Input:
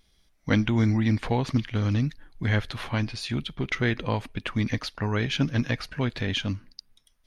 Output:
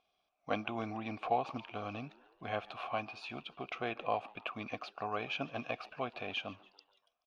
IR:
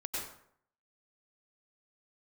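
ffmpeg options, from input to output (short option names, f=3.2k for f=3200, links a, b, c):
-filter_complex "[0:a]asplit=3[a][b][c];[a]bandpass=f=730:t=q:w=8,volume=0dB[d];[b]bandpass=f=1.09k:t=q:w=8,volume=-6dB[e];[c]bandpass=f=2.44k:t=q:w=8,volume=-9dB[f];[d][e][f]amix=inputs=3:normalize=0,asplit=5[g][h][i][j][k];[h]adelay=143,afreqshift=97,volume=-22dB[l];[i]adelay=286,afreqshift=194,volume=-27.4dB[m];[j]adelay=429,afreqshift=291,volume=-32.7dB[n];[k]adelay=572,afreqshift=388,volume=-38.1dB[o];[g][l][m][n][o]amix=inputs=5:normalize=0,volume=6dB"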